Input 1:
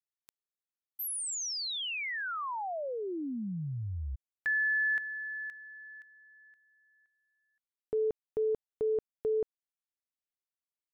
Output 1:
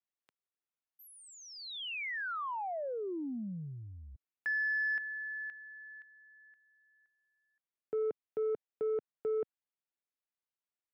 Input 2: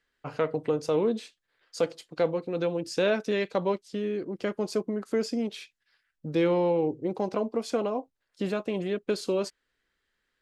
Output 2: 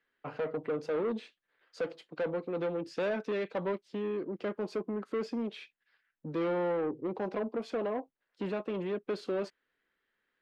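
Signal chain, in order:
soft clipping −26.5 dBFS
three-way crossover with the lows and the highs turned down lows −13 dB, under 150 Hz, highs −19 dB, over 3,500 Hz
level −1 dB

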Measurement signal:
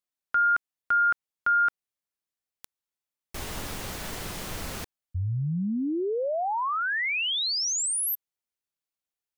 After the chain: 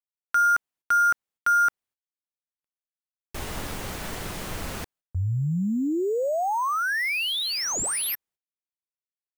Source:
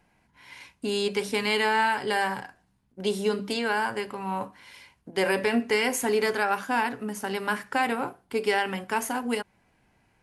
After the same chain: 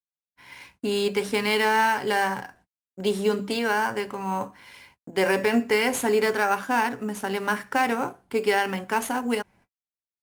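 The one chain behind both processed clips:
noise gate −57 dBFS, range −51 dB
in parallel at −8.5 dB: sample-rate reduction 7,300 Hz, jitter 0%

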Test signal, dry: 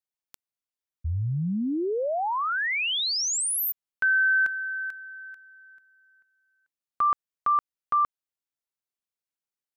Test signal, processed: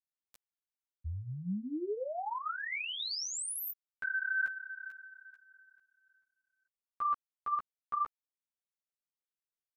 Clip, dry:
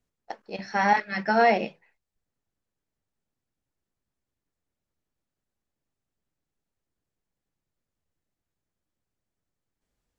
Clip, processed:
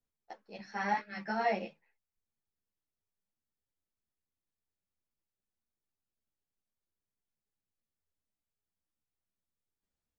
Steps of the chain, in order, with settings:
string-ensemble chorus
level −8 dB

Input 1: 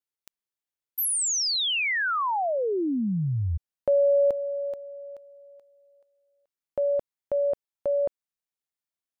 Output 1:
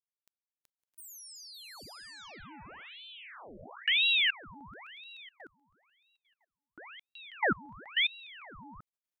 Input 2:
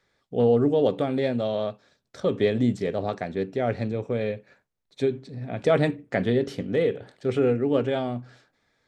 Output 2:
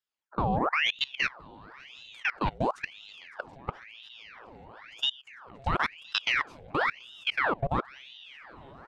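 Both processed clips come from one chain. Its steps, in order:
multi-tap delay 376/559/661/668/731 ms −17.5/−13/−19.5/−19/−14.5 dB
output level in coarse steps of 23 dB
ring modulator whose carrier an LFO sweeps 1,800 Hz, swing 85%, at 0.98 Hz

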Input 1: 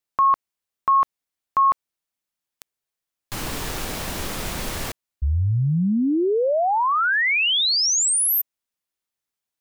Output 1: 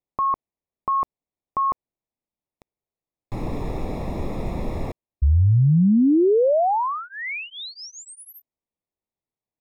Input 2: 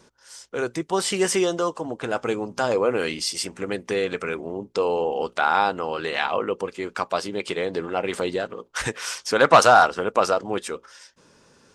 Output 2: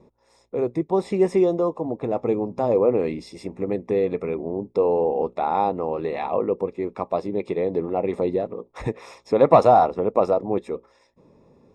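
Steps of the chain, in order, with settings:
moving average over 29 samples
level +4.5 dB

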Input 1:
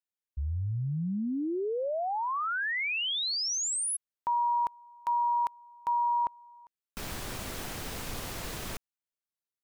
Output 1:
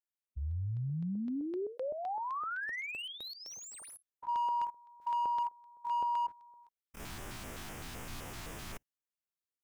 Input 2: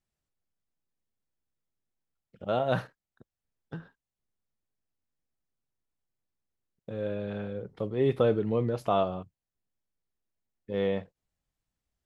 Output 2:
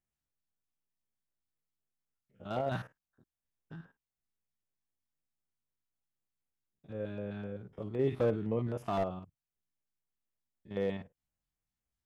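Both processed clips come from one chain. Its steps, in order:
spectrum averaged block by block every 50 ms
auto-filter notch square 3.9 Hz 500–4,200 Hz
slew-rate limiting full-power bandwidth 48 Hz
level −4 dB

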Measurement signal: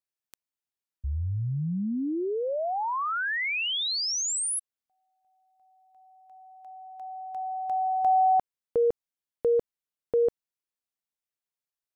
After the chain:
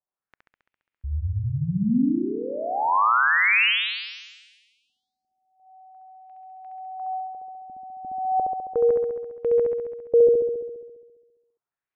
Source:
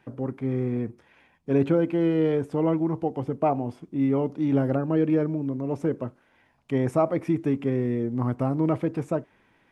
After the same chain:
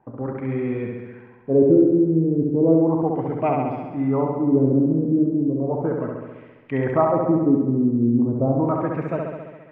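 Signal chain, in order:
auto-filter low-pass sine 0.35 Hz 240–2,600 Hz
on a send: flutter between parallel walls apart 11.6 metres, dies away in 1.3 s

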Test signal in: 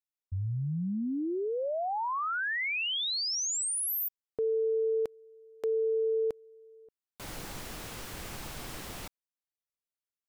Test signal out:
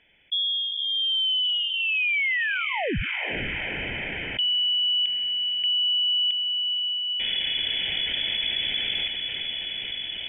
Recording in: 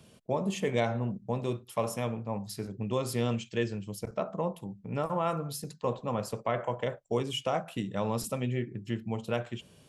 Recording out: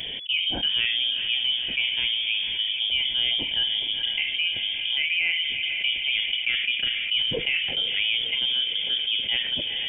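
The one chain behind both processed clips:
phaser with its sweep stopped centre 600 Hz, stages 6
feedback delay with all-pass diffusion 473 ms, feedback 58%, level −14 dB
voice inversion scrambler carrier 3,400 Hz
envelope flattener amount 70%
level +6 dB

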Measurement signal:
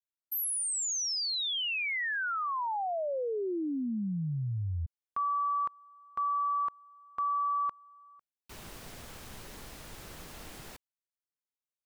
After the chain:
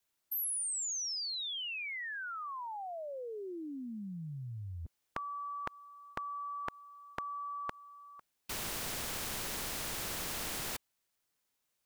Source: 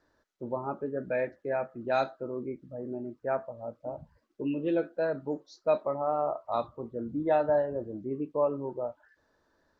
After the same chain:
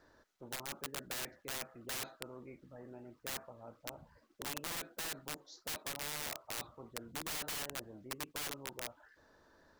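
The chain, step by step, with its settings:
wrap-around overflow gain 26 dB
every bin compressed towards the loudest bin 2 to 1
level +5 dB

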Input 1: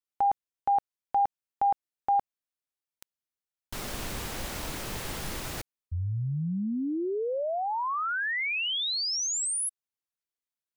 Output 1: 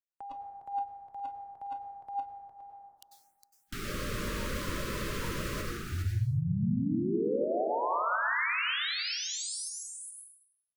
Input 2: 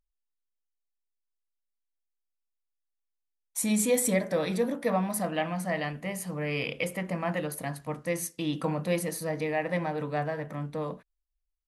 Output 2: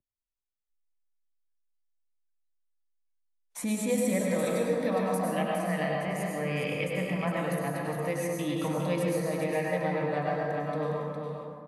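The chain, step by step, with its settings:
high-shelf EQ 5,200 Hz −5.5 dB
single-tap delay 409 ms −7.5 dB
dense smooth reverb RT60 1.4 s, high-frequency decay 0.45×, pre-delay 85 ms, DRR −1.5 dB
noise reduction from a noise print of the clip's start 22 dB
multiband upward and downward compressor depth 40%
level −4 dB

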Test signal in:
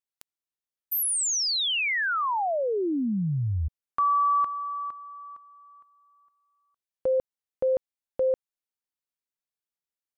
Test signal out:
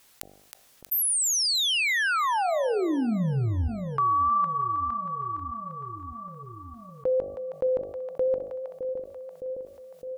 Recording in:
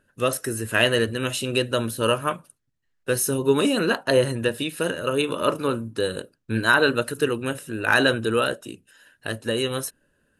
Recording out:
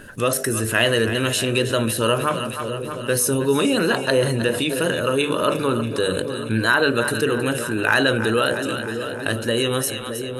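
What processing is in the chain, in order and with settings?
hum removal 49.39 Hz, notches 16
tape wow and flutter 26 cents
on a send: echo with a time of its own for lows and highs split 600 Hz, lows 612 ms, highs 317 ms, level −14.5 dB
on the sum: envelope flattener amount 50%
level −1 dB

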